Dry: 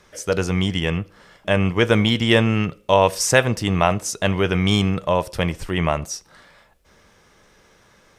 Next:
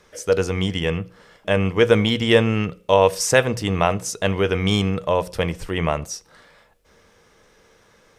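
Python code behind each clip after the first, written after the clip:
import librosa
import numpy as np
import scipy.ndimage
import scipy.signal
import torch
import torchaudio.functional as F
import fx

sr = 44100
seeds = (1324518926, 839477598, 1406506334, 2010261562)

y = fx.peak_eq(x, sr, hz=470.0, db=7.0, octaves=0.21)
y = fx.hum_notches(y, sr, base_hz=60, count=3)
y = y * librosa.db_to_amplitude(-1.5)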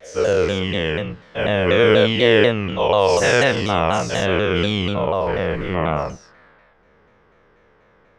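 y = fx.spec_dilate(x, sr, span_ms=240)
y = fx.filter_sweep_lowpass(y, sr, from_hz=4200.0, to_hz=1900.0, start_s=4.67, end_s=5.3, q=0.8)
y = fx.vibrato_shape(y, sr, shape='saw_down', rate_hz=4.1, depth_cents=160.0)
y = y * librosa.db_to_amplitude(-4.5)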